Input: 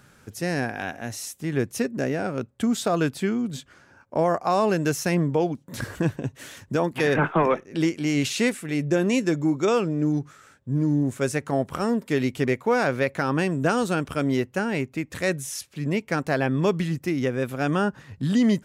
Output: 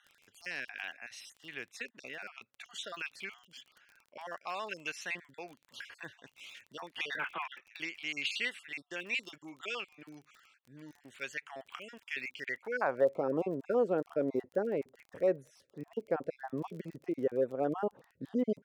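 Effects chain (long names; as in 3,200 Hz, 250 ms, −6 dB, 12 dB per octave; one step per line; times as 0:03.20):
time-frequency cells dropped at random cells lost 36%
band-pass filter sweep 2,700 Hz → 500 Hz, 0:12.45–0:13.10
surface crackle 27 per second −45 dBFS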